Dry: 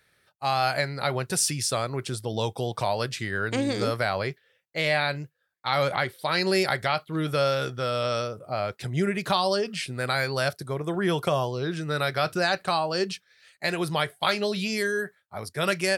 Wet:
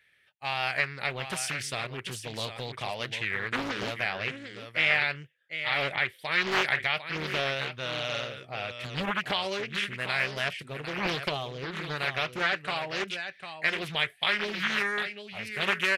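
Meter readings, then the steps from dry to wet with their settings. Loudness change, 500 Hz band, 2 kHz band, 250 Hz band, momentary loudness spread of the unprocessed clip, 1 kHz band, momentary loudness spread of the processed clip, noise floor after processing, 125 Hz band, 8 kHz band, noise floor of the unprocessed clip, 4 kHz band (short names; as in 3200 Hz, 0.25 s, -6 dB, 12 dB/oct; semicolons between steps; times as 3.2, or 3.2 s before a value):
-3.0 dB, -9.0 dB, +2.0 dB, -8.5 dB, 7 LU, -6.0 dB, 10 LU, -58 dBFS, -9.0 dB, -9.0 dB, -69 dBFS, -1.0 dB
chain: band shelf 2400 Hz +13 dB 1.2 oct; echo 0.75 s -9.5 dB; downsampling 32000 Hz; Doppler distortion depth 0.77 ms; gain -9 dB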